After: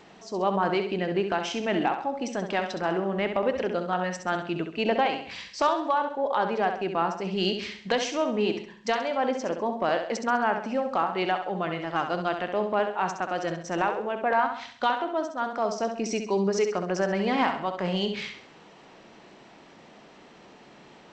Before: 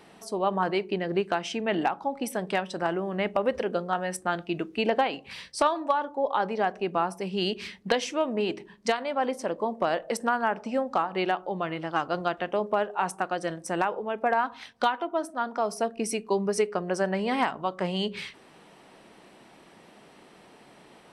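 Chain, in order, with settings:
transient designer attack −4 dB, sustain 0 dB
flutter between parallel walls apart 11.4 metres, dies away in 0.52 s
level +1.5 dB
G.722 64 kbit/s 16,000 Hz

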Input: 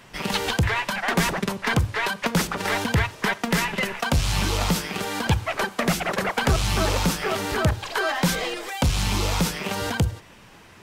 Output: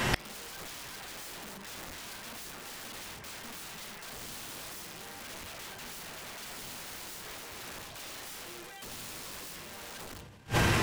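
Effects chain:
coupled-rooms reverb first 0.39 s, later 2.3 s, from −17 dB, DRR 0.5 dB
in parallel at 0 dB: brickwall limiter −19.5 dBFS, peak gain reduction 13.5 dB
on the sum: transient designer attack 0 dB, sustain +7 dB
wrap-around overflow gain 15 dB
gate with flip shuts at −22 dBFS, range −35 dB
level +11 dB

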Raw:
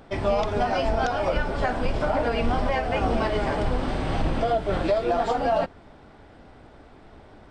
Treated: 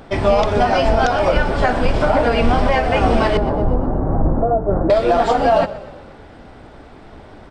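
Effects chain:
0:03.37–0:04.90: Bessel low-pass filter 760 Hz, order 8
on a send: echo with shifted repeats 122 ms, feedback 55%, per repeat −31 Hz, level −16.5 dB
on the sum: level +8.5 dB

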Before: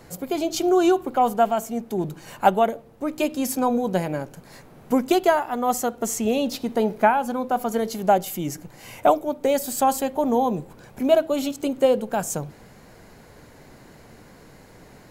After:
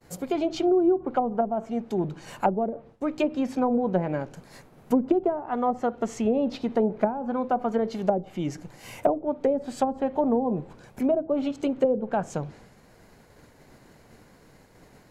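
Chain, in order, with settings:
downward expander −42 dBFS
treble cut that deepens with the level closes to 440 Hz, closed at −15.5 dBFS
level −1 dB

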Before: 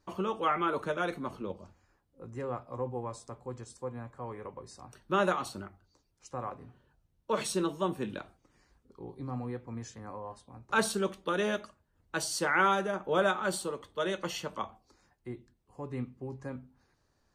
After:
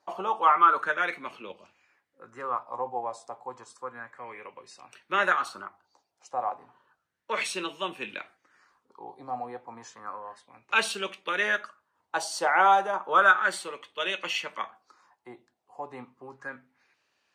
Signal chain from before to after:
meter weighting curve A
auto-filter bell 0.32 Hz 720–2,700 Hz +15 dB

